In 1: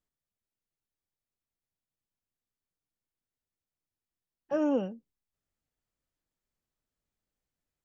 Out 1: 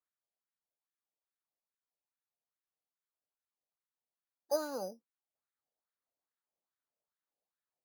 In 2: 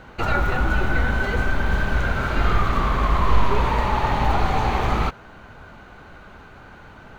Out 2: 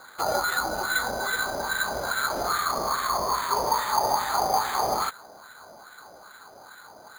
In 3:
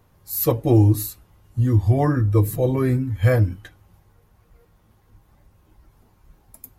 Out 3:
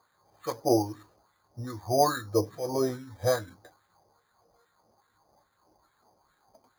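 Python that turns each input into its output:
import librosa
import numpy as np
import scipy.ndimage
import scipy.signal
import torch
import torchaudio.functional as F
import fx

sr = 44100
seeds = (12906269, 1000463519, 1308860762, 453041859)

p1 = fx.high_shelf(x, sr, hz=2600.0, db=-9.5)
p2 = fx.rider(p1, sr, range_db=10, speed_s=0.5)
p3 = p1 + F.gain(torch.from_numpy(p2), -2.0).numpy()
p4 = fx.wah_lfo(p3, sr, hz=2.4, low_hz=610.0, high_hz=1700.0, q=2.4)
y = np.repeat(scipy.signal.resample_poly(p4, 1, 8), 8)[:len(p4)]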